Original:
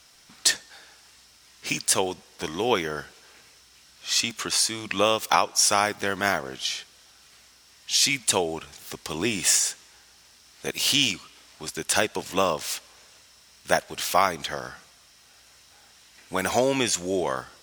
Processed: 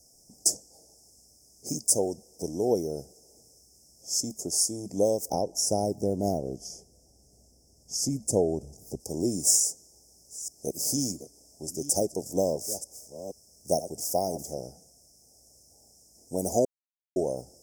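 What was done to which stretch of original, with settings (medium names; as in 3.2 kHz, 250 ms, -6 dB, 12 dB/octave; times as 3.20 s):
5.28–9.00 s: tilt EQ -2 dB/octave
9.54–14.69 s: chunks repeated in reverse 472 ms, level -13.5 dB
16.65–17.16 s: mute
whole clip: inverse Chebyshev band-stop 1.1–4.1 kHz, stop band 40 dB; peaking EQ 5.1 kHz +10 dB 0.32 oct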